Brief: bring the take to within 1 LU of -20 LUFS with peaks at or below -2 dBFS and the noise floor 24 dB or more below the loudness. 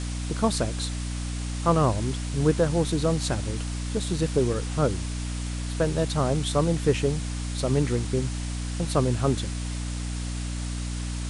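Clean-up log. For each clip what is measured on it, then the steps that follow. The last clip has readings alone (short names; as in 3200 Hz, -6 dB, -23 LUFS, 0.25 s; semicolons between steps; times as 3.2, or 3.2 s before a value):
hum 60 Hz; harmonics up to 300 Hz; hum level -28 dBFS; noise floor -31 dBFS; noise floor target -51 dBFS; loudness -27.0 LUFS; peak -9.0 dBFS; loudness target -20.0 LUFS
-> notches 60/120/180/240/300 Hz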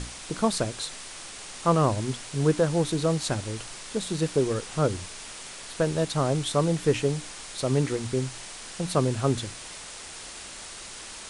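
hum none; noise floor -41 dBFS; noise floor target -51 dBFS
-> noise print and reduce 10 dB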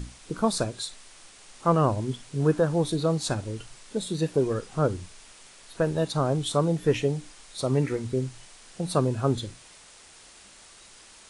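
noise floor -51 dBFS; loudness -27.0 LUFS; peak -10.0 dBFS; loudness target -20.0 LUFS
-> gain +7 dB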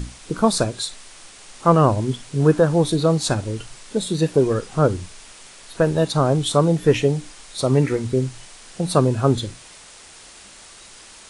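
loudness -20.0 LUFS; peak -3.0 dBFS; noise floor -44 dBFS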